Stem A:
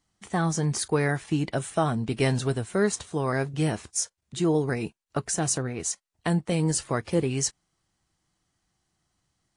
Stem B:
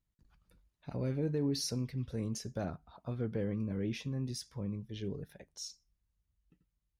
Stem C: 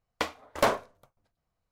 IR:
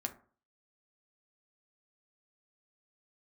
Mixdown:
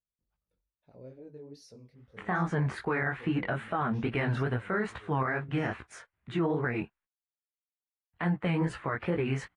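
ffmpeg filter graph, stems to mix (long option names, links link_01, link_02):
-filter_complex "[0:a]firequalizer=gain_entry='entry(480,0);entry(1400,9);entry(2000,7);entry(5500,-24)':delay=0.05:min_phase=1,adelay=1950,volume=1.5dB,asplit=3[link_01][link_02][link_03];[link_01]atrim=end=7.05,asetpts=PTS-STARTPTS,afade=type=out:start_time=7.046:duration=0.004:curve=hsin[link_04];[link_02]atrim=start=7.05:end=8.13,asetpts=PTS-STARTPTS,volume=0[link_05];[link_03]atrim=start=8.13,asetpts=PTS-STARTPTS,afade=type=in:duration=0.004:curve=hsin[link_06];[link_04][link_05][link_06]concat=n=3:v=0:a=1[link_07];[1:a]lowpass=10000,equalizer=frequency=530:width_type=o:width=1.2:gain=10.5,volume=-16dB[link_08];[link_07][link_08]amix=inputs=2:normalize=0,flanger=delay=16:depth=7.5:speed=2.4,alimiter=limit=-20.5dB:level=0:latency=1:release=56,volume=0dB"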